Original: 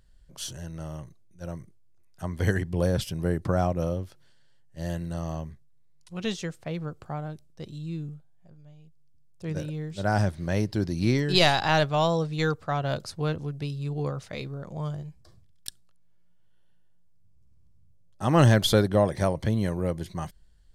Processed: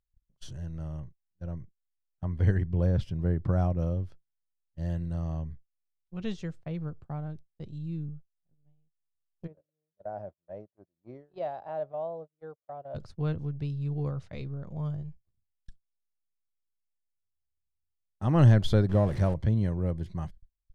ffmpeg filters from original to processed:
-filter_complex "[0:a]asettb=1/sr,asplit=3[s0][s1][s2];[s0]atrim=end=1.004[s3];[s1]atrim=start=1:end=3.48,asetpts=PTS-STARTPTS,afade=t=in:d=0.004:c=qsin,afade=t=out:st=2.476:d=0.004:c=qsin,highshelf=f=7400:g=-11.5[s4];[s2]atrim=start=3.476[s5];[s3][s4]acrossfade=d=0.004:c1=hsin:c2=qsin[s6];[s6][s5]acrossfade=d=0.004:c1=qsin:c2=hsin,asplit=3[s7][s8][s9];[s7]afade=t=out:st=9.46:d=0.02[s10];[s8]bandpass=f=620:t=q:w=3.8,afade=t=in:st=9.46:d=0.02,afade=t=out:st=12.94:d=0.02[s11];[s9]afade=t=in:st=12.94:d=0.02[s12];[s10][s11][s12]amix=inputs=3:normalize=0,asettb=1/sr,asplit=3[s13][s14][s15];[s13]atrim=end=18.894[s16];[s14]atrim=start=18.89:end=19.34,asetpts=PTS-STARTPTS,afade=t=in:d=0.004:c=qsin,afade=t=out:st=0.446:d=0.004:c=qsin,aeval=exprs='val(0)+0.5*0.0266*sgn(val(0))':c=same[s17];[s15]atrim=start=19.336[s18];[s16][s17]acrossfade=d=0.004:c1=hsin:c2=qsin[s19];[s19][s18]acrossfade=d=0.004:c1=qsin:c2=hsin,aemphasis=mode=reproduction:type=bsi,acompressor=mode=upward:threshold=0.0141:ratio=2.5,agate=range=0.0158:threshold=0.02:ratio=16:detection=peak,volume=0.398"

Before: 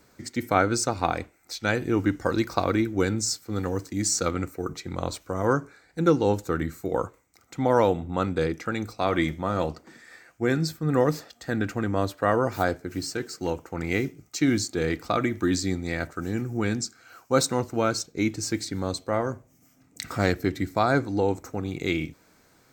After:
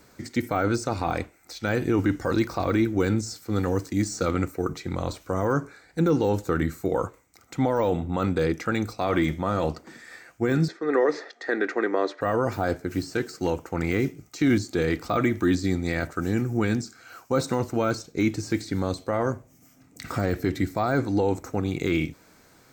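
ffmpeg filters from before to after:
-filter_complex "[0:a]asettb=1/sr,asplit=3[s0][s1][s2];[s0]atrim=end=10.684[s3];[s1]atrim=start=10.68:end=12.21,asetpts=PTS-STARTPTS,afade=t=in:d=0.004:c=qsin,afade=t=out:st=1.526:d=0.004:c=qsin,highpass=f=320:w=0.5412,highpass=f=320:w=1.3066,equalizer=f=400:t=q:w=4:g=8,equalizer=f=1900:t=q:w=4:g=9,equalizer=f=2900:t=q:w=4:g=-8,equalizer=f=4800:t=q:w=4:g=-4,lowpass=f=5300:w=0.5412,lowpass=f=5300:w=1.3066[s4];[s2]atrim=start=12.206[s5];[s3][s4]acrossfade=d=0.004:c1=hsin:c2=qsin[s6];[s6][s5]acrossfade=d=0.004:c1=qsin:c2=hsin,deesser=1,alimiter=limit=0.141:level=0:latency=1:release=13,volume=1.58"

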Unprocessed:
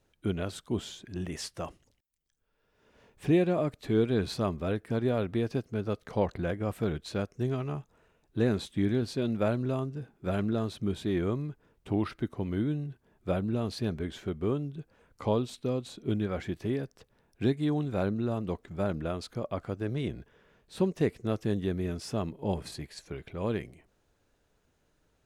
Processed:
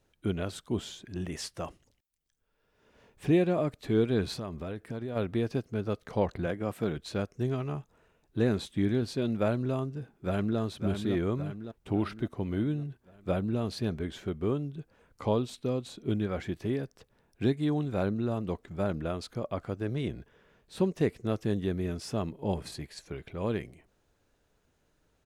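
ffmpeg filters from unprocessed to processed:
-filter_complex "[0:a]asplit=3[s0][s1][s2];[s0]afade=t=out:st=4.35:d=0.02[s3];[s1]acompressor=threshold=0.0224:ratio=5:attack=3.2:release=140:knee=1:detection=peak,afade=t=in:st=4.35:d=0.02,afade=t=out:st=5.15:d=0.02[s4];[s2]afade=t=in:st=5.15:d=0.02[s5];[s3][s4][s5]amix=inputs=3:normalize=0,asettb=1/sr,asplit=3[s6][s7][s8];[s6]atrim=end=6.464[s9];[s7]atrim=start=6.46:end=6.97,asetpts=PTS-STARTPTS,afade=t=in:d=0.004:c=qsin,afade=t=out:st=0.506:d=0.004:c=qsin,highpass=120[s10];[s8]atrim=start=6.966[s11];[s9][s10]acrossfade=d=0.004:c1=hsin:c2=qsin[s12];[s12][s11]acrossfade=d=0.004:c1=qsin:c2=hsin,asplit=2[s13][s14];[s14]afade=t=in:st=10.13:d=0.01,afade=t=out:st=10.59:d=0.01,aecho=0:1:560|1120|1680|2240|2800|3360|3920:0.473151|0.260233|0.143128|0.0787205|0.0432963|0.023813|0.0130971[s15];[s13][s15]amix=inputs=2:normalize=0"

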